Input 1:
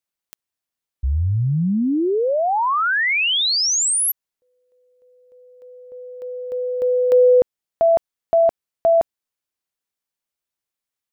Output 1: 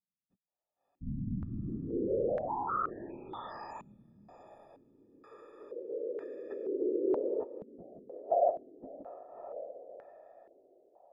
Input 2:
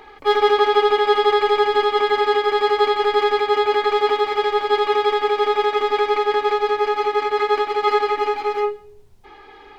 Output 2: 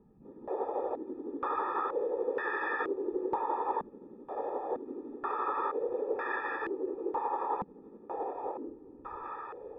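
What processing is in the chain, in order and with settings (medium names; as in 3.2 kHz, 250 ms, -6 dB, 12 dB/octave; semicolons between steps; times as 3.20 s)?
partials quantised in pitch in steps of 6 st; compression 2:1, threshold -42 dBFS; whisper effect; on a send: echo that smears into a reverb 618 ms, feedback 45%, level -9 dB; on the sum: step-sequenced low-pass 2.1 Hz 200–1700 Hz; trim -7 dB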